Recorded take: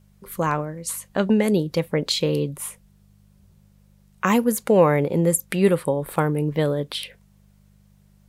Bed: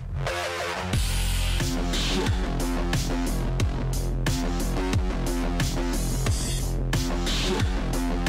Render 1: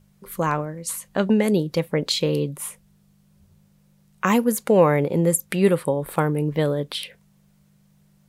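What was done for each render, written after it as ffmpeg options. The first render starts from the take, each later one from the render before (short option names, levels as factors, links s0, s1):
-af "bandreject=f=50:t=h:w=4,bandreject=f=100:t=h:w=4"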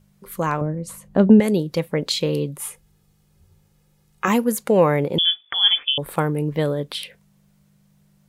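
-filter_complex "[0:a]asettb=1/sr,asplit=3[s0][s1][s2];[s0]atrim=end=0.614[s3];[s1]atrim=start=0.61:end=1.4,asetpts=PTS-STARTPTS,afade=t=in:d=0.004:c=qsin,afade=t=out:st=0.786:d=0.004:c=qsin,tiltshelf=f=930:g=9[s4];[s2]atrim=start=1.396[s5];[s3][s4]acrossfade=d=0.004:c1=hsin:c2=qsin[s6];[s6][s5]acrossfade=d=0.004:c1=qsin:c2=hsin,asettb=1/sr,asplit=3[s7][s8][s9];[s7]atrim=end=2.584[s10];[s8]atrim=start=2.58:end=4.28,asetpts=PTS-STARTPTS,afade=t=in:d=0.004:c=qsin,afade=t=out:st=1.696:d=0.004:c=qsin,aecho=1:1:2.4:0.59,atrim=end_sample=74970[s11];[s9]atrim=start=4.276[s12];[s10][s11]acrossfade=d=0.004:c1=hsin:c2=qsin[s13];[s13][s12]acrossfade=d=0.004:c1=qsin:c2=hsin,asettb=1/sr,asplit=3[s14][s15][s16];[s14]atrim=end=5.184[s17];[s15]atrim=start=5.18:end=5.98,asetpts=PTS-STARTPTS,afade=t=in:d=0.004:c=qsin,afade=t=out:st=0.796:d=0.004:c=qsin,lowpass=f=3100:t=q:w=0.5098,lowpass=f=3100:t=q:w=0.6013,lowpass=f=3100:t=q:w=0.9,lowpass=f=3100:t=q:w=2.563,afreqshift=-3600[s18];[s16]atrim=start=5.976[s19];[s17][s18]acrossfade=d=0.004:c1=hsin:c2=qsin[s20];[s20][s19]acrossfade=d=0.004:c1=qsin:c2=hsin"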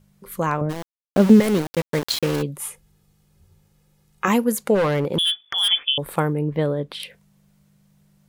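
-filter_complex "[0:a]asplit=3[s0][s1][s2];[s0]afade=t=out:st=0.69:d=0.02[s3];[s1]aeval=exprs='val(0)*gte(abs(val(0)),0.0668)':c=same,afade=t=in:st=0.69:d=0.02,afade=t=out:st=2.41:d=0.02[s4];[s2]afade=t=in:st=2.41:d=0.02[s5];[s3][s4][s5]amix=inputs=3:normalize=0,asplit=3[s6][s7][s8];[s6]afade=t=out:st=4.74:d=0.02[s9];[s7]asoftclip=type=hard:threshold=0.15,afade=t=in:st=4.74:d=0.02,afade=t=out:st=5.68:d=0.02[s10];[s8]afade=t=in:st=5.68:d=0.02[s11];[s9][s10][s11]amix=inputs=3:normalize=0,asettb=1/sr,asplit=3[s12][s13][s14];[s12]atrim=end=6.334[s15];[s13]atrim=start=6.33:end=7,asetpts=PTS-STARTPTS,afade=t=in:d=0.004:c=qsin,afade=t=out:st=0.666:d=0.004:c=qsin,highshelf=f=3700:g=-11.5[s16];[s14]atrim=start=6.996[s17];[s15][s16]acrossfade=d=0.004:c1=hsin:c2=qsin[s18];[s18][s17]acrossfade=d=0.004:c1=qsin:c2=hsin"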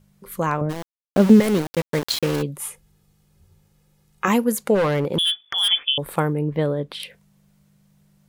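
-af anull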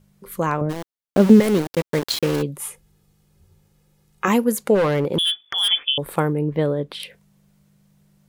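-af "equalizer=f=370:w=1.5:g=2.5"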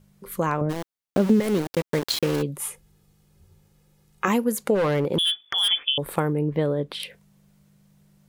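-af "acompressor=threshold=0.0891:ratio=2"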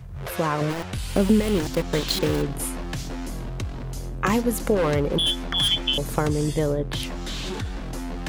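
-filter_complex "[1:a]volume=0.531[s0];[0:a][s0]amix=inputs=2:normalize=0"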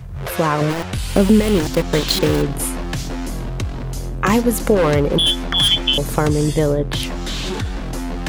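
-af "volume=2.11,alimiter=limit=0.794:level=0:latency=1"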